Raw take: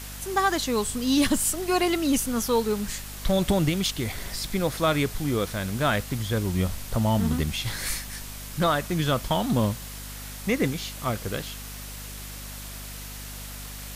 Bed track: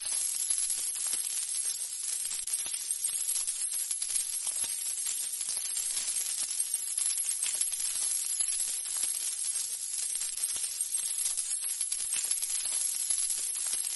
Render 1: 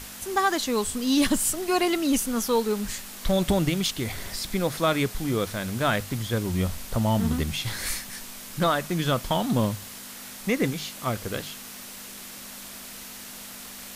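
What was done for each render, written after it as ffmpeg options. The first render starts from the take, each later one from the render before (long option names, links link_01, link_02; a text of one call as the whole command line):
ffmpeg -i in.wav -af "bandreject=frequency=50:width_type=h:width=6,bandreject=frequency=100:width_type=h:width=6,bandreject=frequency=150:width_type=h:width=6" out.wav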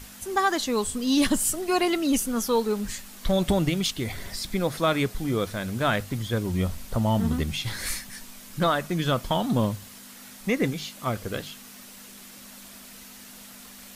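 ffmpeg -i in.wav -af "afftdn=noise_reduction=6:noise_floor=-41" out.wav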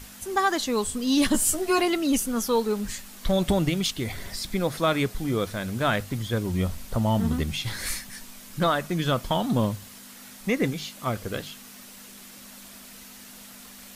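ffmpeg -i in.wav -filter_complex "[0:a]asettb=1/sr,asplit=3[link_01][link_02][link_03];[link_01]atrim=end=1.334[link_04];[link_02]atrim=start=1.33:end=1.82,asetpts=PTS-STARTPTS,afade=type=in:duration=0.004:curve=qsin,afade=type=out:start_time=0.486:duration=0.004:curve=qsin,asplit=2[link_05][link_06];[link_06]adelay=13,volume=-2.5dB[link_07];[link_05][link_07]amix=inputs=2:normalize=0,atrim=end_sample=21609[link_08];[link_03]atrim=start=1.816[link_09];[link_04][link_08]acrossfade=duration=0.004:curve1=hsin:curve2=qsin[link_10];[link_10][link_09]acrossfade=duration=0.004:curve1=qsin:curve2=hsin" out.wav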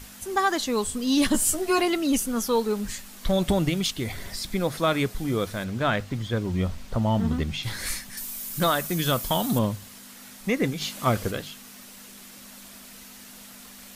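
ffmpeg -i in.wav -filter_complex "[0:a]asettb=1/sr,asplit=3[link_01][link_02][link_03];[link_01]atrim=end=5.644[link_04];[link_02]atrim=start=5.64:end=7.63,asetpts=PTS-STARTPTS,afade=type=in:duration=0.004:curve=qsin,afade=type=out:start_time=1.986:duration=0.004:curve=qsin,equalizer=frequency=12000:width_type=o:width=1.1:gain=-12[link_05];[link_03]atrim=start=7.626[link_06];[link_04][link_05]acrossfade=duration=0.004:curve1=hsin:curve2=qsin[link_07];[link_07][link_06]acrossfade=duration=0.004:curve1=qsin:curve2=hsin,asettb=1/sr,asplit=3[link_08][link_09][link_10];[link_08]atrim=end=8.174[link_11];[link_09]atrim=start=8.17:end=9.59,asetpts=PTS-STARTPTS,afade=type=in:duration=0.004:curve=qsin,afade=type=out:start_time=1.416:duration=0.004:curve=qsin,aemphasis=mode=production:type=50fm[link_12];[link_10]atrim=start=9.586[link_13];[link_11][link_12]acrossfade=duration=0.004:curve1=hsin:curve2=qsin[link_14];[link_14][link_13]acrossfade=duration=0.004:curve1=qsin:curve2=hsin,asplit=3[link_15][link_16][link_17];[link_15]afade=type=out:start_time=10.8:duration=0.02[link_18];[link_16]acontrast=38,afade=type=in:start_time=10.8:duration=0.02,afade=type=out:start_time=11.3:duration=0.02[link_19];[link_17]afade=type=in:start_time=11.3:duration=0.02[link_20];[link_18][link_19][link_20]amix=inputs=3:normalize=0" out.wav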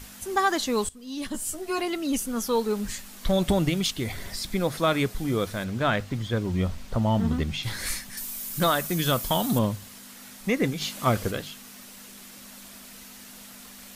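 ffmpeg -i in.wav -filter_complex "[0:a]asplit=2[link_01][link_02];[link_01]atrim=end=0.89,asetpts=PTS-STARTPTS,afade=type=out:start_time=0.886:duration=0.004:curve=hsin:silence=0.112202[link_03];[link_02]atrim=start=0.89,asetpts=PTS-STARTPTS,afade=type=in:duration=1.97:silence=0.112202[link_04];[link_03][link_04]concat=n=2:v=0:a=1" out.wav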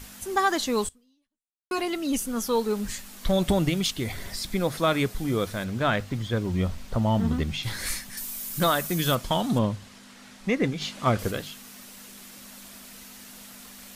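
ffmpeg -i in.wav -filter_complex "[0:a]asettb=1/sr,asplit=3[link_01][link_02][link_03];[link_01]atrim=end=9.154[link_04];[link_02]atrim=start=9.15:end=11.19,asetpts=PTS-STARTPTS,afade=type=in:duration=0.004:curve=qsin,afade=type=out:start_time=2.036:duration=0.004:curve=qsin,adynamicsmooth=sensitivity=1.5:basefreq=6600[link_05];[link_03]atrim=start=11.186[link_06];[link_04][link_05]acrossfade=duration=0.004:curve1=hsin:curve2=qsin[link_07];[link_07][link_06]acrossfade=duration=0.004:curve1=qsin:curve2=hsin,asplit=2[link_08][link_09];[link_08]atrim=end=1.71,asetpts=PTS-STARTPTS,afade=type=out:start_time=0.86:duration=0.85:curve=exp[link_10];[link_09]atrim=start=1.71,asetpts=PTS-STARTPTS,afade=type=in:duration=0.004:curve=hsin[link_11];[link_10][link_11]concat=n=2:v=0:a=1" out.wav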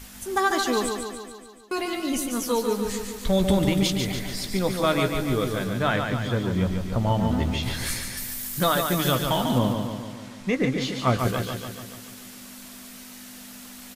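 ffmpeg -i in.wav -filter_complex "[0:a]asplit=2[link_01][link_02];[link_02]adelay=16,volume=-10.5dB[link_03];[link_01][link_03]amix=inputs=2:normalize=0,aecho=1:1:144|288|432|576|720|864|1008|1152:0.531|0.313|0.185|0.109|0.0643|0.038|0.0224|0.0132" out.wav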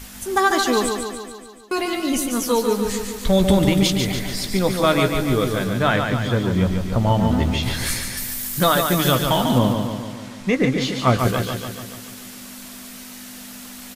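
ffmpeg -i in.wav -af "volume=5dB" out.wav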